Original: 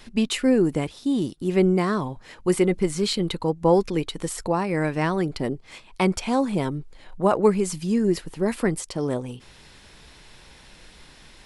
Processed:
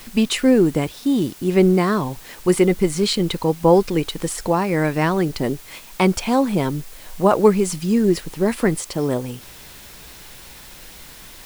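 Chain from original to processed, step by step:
bit-depth reduction 8 bits, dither triangular
level +4.5 dB

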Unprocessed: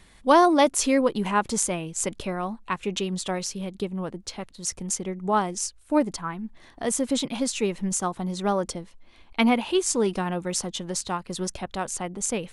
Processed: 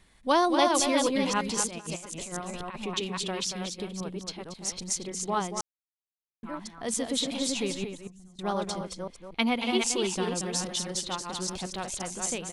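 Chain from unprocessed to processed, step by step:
delay that plays each chunk backwards 267 ms, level −4 dB
0:07.84–0:08.39: guitar amp tone stack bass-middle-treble 10-0-1
0:11.41–0:12.05: surface crackle 120 per second → 33 per second −43 dBFS
single-tap delay 231 ms −7.5 dB
dynamic equaliser 4,100 Hz, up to +8 dB, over −43 dBFS, Q 0.92
0:01.67–0:02.87: compressor whose output falls as the input rises −29 dBFS, ratio −0.5
0:05.61–0:06.43: silence
level −7 dB

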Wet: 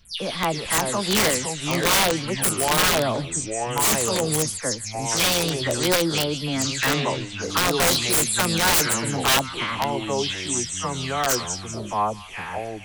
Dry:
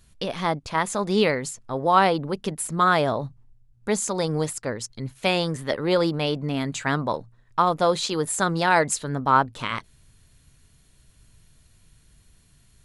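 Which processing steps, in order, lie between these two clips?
every frequency bin delayed by itself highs early, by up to 165 ms
high-shelf EQ 2,800 Hz +9 dB
delay with a high-pass on its return 154 ms, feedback 40%, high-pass 3,100 Hz, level −5.5 dB
delay with pitch and tempo change per echo 269 ms, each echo −4 semitones, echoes 2, each echo −6 dB
wrap-around overflow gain 12.5 dB

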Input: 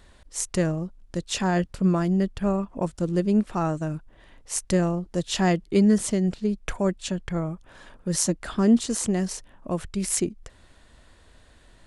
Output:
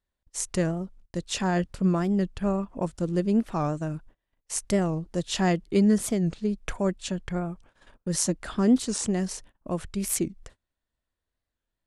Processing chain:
noise gate −45 dBFS, range −30 dB
wow of a warped record 45 rpm, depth 160 cents
level −2 dB

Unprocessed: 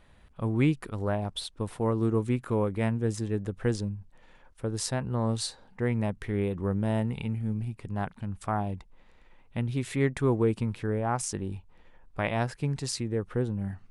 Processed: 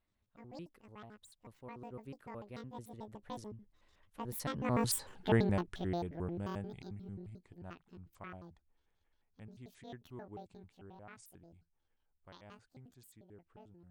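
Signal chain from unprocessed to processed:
pitch shifter gated in a rhythm +11 semitones, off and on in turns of 81 ms
source passing by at 0:05.13, 33 m/s, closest 7.6 metres
level +2.5 dB

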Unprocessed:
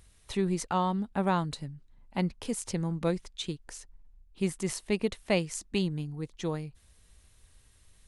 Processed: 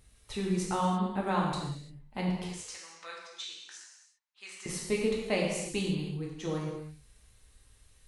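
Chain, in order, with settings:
0:02.44–0:04.66: Chebyshev band-pass filter 1,300–6,600 Hz, order 2
reverb whose tail is shaped and stops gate 370 ms falling, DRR −3.5 dB
level −5 dB

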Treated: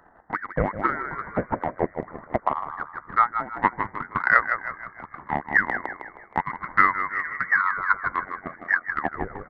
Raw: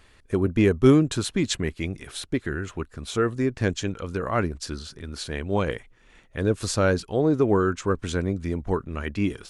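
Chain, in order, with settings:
Butterworth high-pass 680 Hz 48 dB per octave
treble cut that deepens with the level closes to 1,000 Hz, closed at −19 dBFS
echo with shifted repeats 157 ms, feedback 50%, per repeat −36 Hz, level −4.5 dB
voice inversion scrambler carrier 2,600 Hz
transient designer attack +11 dB, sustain −3 dB
level +4.5 dB

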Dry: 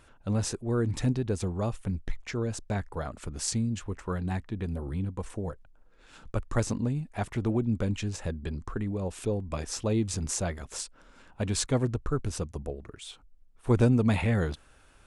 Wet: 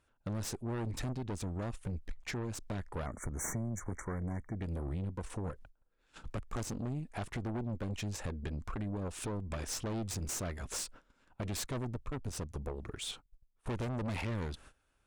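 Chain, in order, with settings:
noise gate −50 dBFS, range −21 dB
harmonic generator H 3 −16 dB, 5 −18 dB, 6 −27 dB, 8 −14 dB, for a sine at −11.5 dBFS
downward compressor 5 to 1, threshold −35 dBFS, peak gain reduction 15.5 dB
soft clipping −33 dBFS, distortion −12 dB
0:03.06–0:04.62: time-frequency box erased 2,300–5,700 Hz
0:03.44–0:04.05: multiband upward and downward compressor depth 70%
level +3 dB

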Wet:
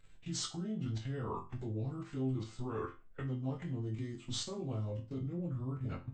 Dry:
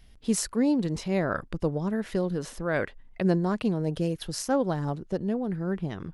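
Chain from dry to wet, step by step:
phase-vocoder pitch shift without resampling −5.5 semitones
output level in coarse steps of 19 dB
resonators tuned to a chord F2 major, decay 0.3 s
level +12 dB

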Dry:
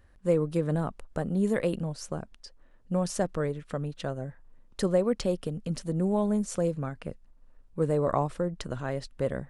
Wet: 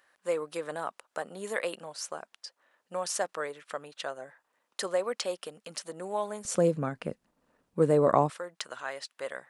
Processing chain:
high-pass filter 790 Hz 12 dB per octave, from 0:06.45 180 Hz, from 0:08.30 1,000 Hz
level +4 dB

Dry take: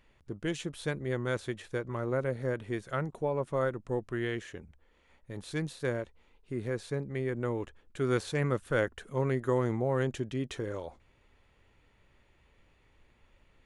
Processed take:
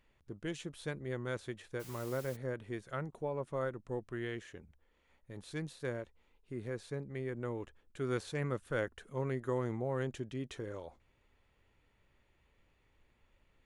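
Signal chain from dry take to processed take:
0:01.79–0:02.35: background noise white −47 dBFS
level −6.5 dB

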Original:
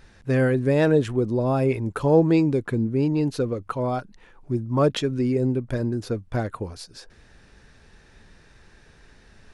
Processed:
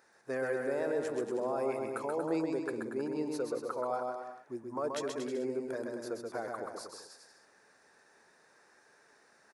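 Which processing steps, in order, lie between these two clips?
high-pass filter 540 Hz 12 dB per octave
parametric band 3,100 Hz −14.5 dB 1 octave
brickwall limiter −22 dBFS, peak gain reduction 10.5 dB
bouncing-ball delay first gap 130 ms, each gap 0.8×, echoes 5
level −4.5 dB

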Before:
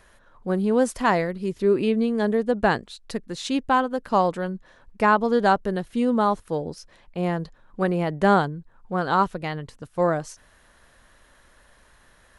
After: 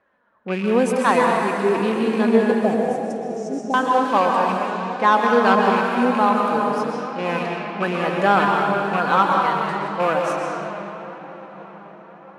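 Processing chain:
loose part that buzzes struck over −29 dBFS, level −23 dBFS
feedback delay with all-pass diffusion 625 ms, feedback 68%, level −12.5 dB
dynamic equaliser 1,200 Hz, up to +6 dB, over −34 dBFS, Q 1.1
0:02.52–0:03.74: Chebyshev band-stop filter 760–5,500 Hz, order 5
leveller curve on the samples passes 1
high-pass filter 200 Hz 12 dB per octave
convolution reverb RT60 2.5 s, pre-delay 113 ms, DRR −0.5 dB
flanger 0.97 Hz, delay 3.5 ms, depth 1.5 ms, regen +55%
low-pass that shuts in the quiet parts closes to 1,600 Hz, open at −17.5 dBFS

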